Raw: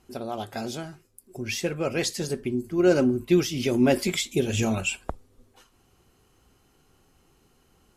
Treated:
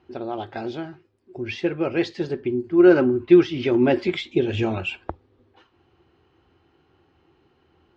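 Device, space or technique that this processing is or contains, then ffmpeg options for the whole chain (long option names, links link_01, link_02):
guitar cabinet: -filter_complex "[0:a]highpass=77,equalizer=frequency=83:width_type=q:width=4:gain=7,equalizer=frequency=210:width_type=q:width=4:gain=-5,equalizer=frequency=340:width_type=q:width=4:gain=9,equalizer=frequency=850:width_type=q:width=4:gain=4,equalizer=frequency=1700:width_type=q:width=4:gain=3,lowpass=frequency=3800:width=0.5412,lowpass=frequency=3800:width=1.3066,asettb=1/sr,asplit=3[link_01][link_02][link_03];[link_01]atrim=end=2.734[link_04];[link_02]atrim=start=2.73:end=3.84,asetpts=PTS-STARTPTS,afade=type=in:duration=0.004:curve=qsin,afade=type=out:start_time=1.106:duration=0.004:curve=qsin,equalizer=frequency=1300:width=1.2:gain=5.5[link_05];[link_03]atrim=start=3.836[link_06];[link_04][link_05]acrossfade=duration=0.004:curve1=hsin:curve2=qsin[link_07];[link_07][link_06]acrossfade=duration=0.004:curve1=qsin:curve2=hsin"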